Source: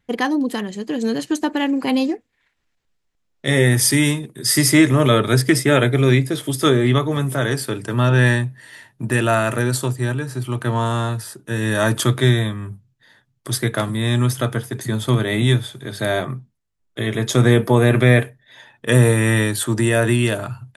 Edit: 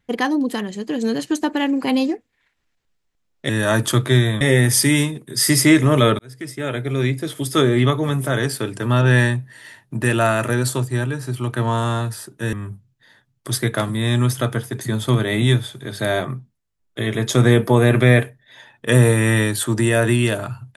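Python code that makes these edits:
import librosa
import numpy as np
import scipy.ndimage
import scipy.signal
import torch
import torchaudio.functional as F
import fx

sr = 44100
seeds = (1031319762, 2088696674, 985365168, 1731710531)

y = fx.edit(x, sr, fx.fade_in_span(start_s=5.27, length_s=1.55),
    fx.move(start_s=11.61, length_s=0.92, to_s=3.49), tone=tone)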